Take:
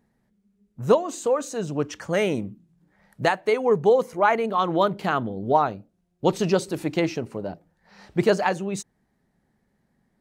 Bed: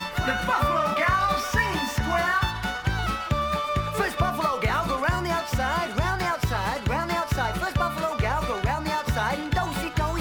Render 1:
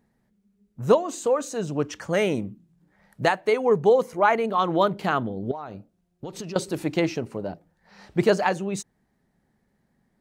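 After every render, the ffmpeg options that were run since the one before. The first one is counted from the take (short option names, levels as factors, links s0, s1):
-filter_complex "[0:a]asettb=1/sr,asplit=3[s0][s1][s2];[s0]atrim=end=5.514[s3];[s1]atrim=start=5.51:end=6.56,asetpts=PTS-STARTPTS,afade=t=in:d=0.004:c=qsin,afade=t=out:st=1.046:d=0.004:c=qsin,acompressor=threshold=0.0282:ratio=10:attack=3.2:release=140:knee=1:detection=peak[s4];[s2]atrim=start=6.556[s5];[s3][s4]acrossfade=d=0.004:c1=hsin:c2=qsin[s6];[s6][s5]acrossfade=d=0.004:c1=qsin:c2=hsin"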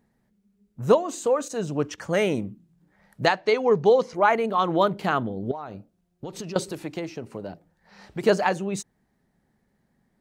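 -filter_complex "[0:a]asettb=1/sr,asplit=3[s0][s1][s2];[s0]atrim=end=1.484[s3];[s1]atrim=start=1.48:end=1.98,asetpts=PTS-STARTPTS,afade=t=in:d=0.004:c=qsin,afade=t=out:st=0.496:d=0.004:c=qsin,agate=range=0.282:threshold=0.01:ratio=16:release=100:detection=peak[s4];[s2]atrim=start=1.976[s5];[s3][s4]acrossfade=d=0.004:c1=hsin:c2=qsin[s6];[s6][s5]acrossfade=d=0.004:c1=qsin:c2=hsin,asettb=1/sr,asplit=3[s7][s8][s9];[s7]atrim=end=3.264[s10];[s8]atrim=start=3.26:end=4.15,asetpts=PTS-STARTPTS,afade=t=in:d=0.004:c=qsin,afade=t=out:st=0.886:d=0.004:c=qsin,lowpass=f=5000:t=q:w=2.3[s11];[s9]atrim=start=4.146[s12];[s10][s11]acrossfade=d=0.004:c1=hsin:c2=qsin[s13];[s13][s12]acrossfade=d=0.004:c1=qsin:c2=hsin,asettb=1/sr,asplit=3[s14][s15][s16];[s14]atrim=end=6.714[s17];[s15]atrim=start=6.71:end=8.24,asetpts=PTS-STARTPTS,afade=t=in:d=0.004:c=qsin,afade=t=out:st=1.526:d=0.004:c=qsin,acrossover=split=460|1400|5100[s18][s19][s20][s21];[s18]acompressor=threshold=0.0178:ratio=3[s22];[s19]acompressor=threshold=0.0112:ratio=3[s23];[s20]acompressor=threshold=0.00501:ratio=3[s24];[s21]acompressor=threshold=0.002:ratio=3[s25];[s22][s23][s24][s25]amix=inputs=4:normalize=0[s26];[s16]atrim=start=8.236[s27];[s17][s26]acrossfade=d=0.004:c1=hsin:c2=qsin[s28];[s28][s27]acrossfade=d=0.004:c1=qsin:c2=hsin"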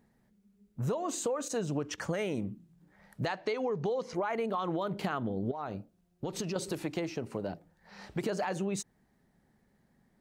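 -af "alimiter=limit=0.126:level=0:latency=1:release=97,acompressor=threshold=0.0355:ratio=6"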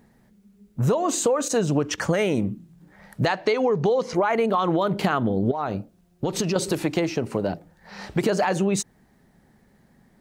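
-af "volume=3.55"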